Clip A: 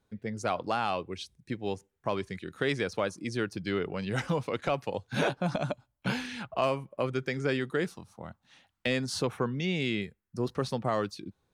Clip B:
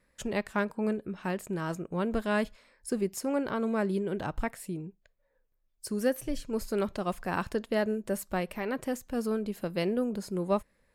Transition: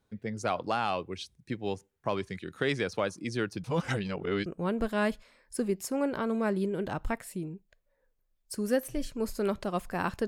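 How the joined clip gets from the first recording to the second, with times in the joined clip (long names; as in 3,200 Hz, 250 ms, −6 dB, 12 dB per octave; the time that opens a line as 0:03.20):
clip A
0:03.64–0:04.46: reverse
0:04.46: continue with clip B from 0:01.79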